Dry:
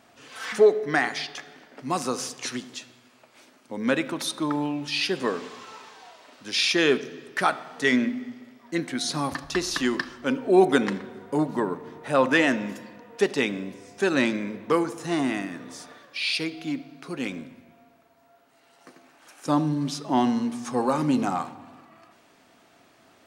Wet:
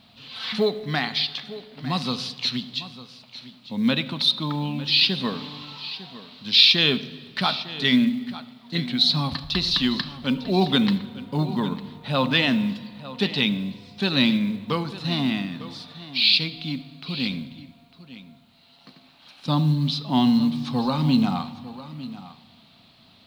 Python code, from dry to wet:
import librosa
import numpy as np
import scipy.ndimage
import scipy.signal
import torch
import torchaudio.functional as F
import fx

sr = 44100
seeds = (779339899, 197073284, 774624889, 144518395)

p1 = fx.curve_eq(x, sr, hz=(220.0, 330.0, 990.0, 1700.0, 4100.0, 6500.0), db=(0, -17, -10, -15, 6, -23))
p2 = fx.quant_companded(p1, sr, bits=8)
p3 = p2 + fx.echo_single(p2, sr, ms=902, db=-15.5, dry=0)
y = p3 * librosa.db_to_amplitude(9.0)